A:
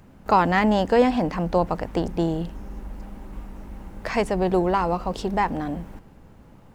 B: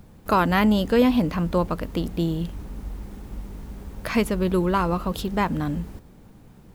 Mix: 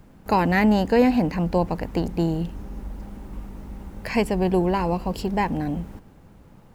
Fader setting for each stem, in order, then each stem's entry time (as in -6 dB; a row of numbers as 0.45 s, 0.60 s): -2.0 dB, -6.5 dB; 0.00 s, 0.00 s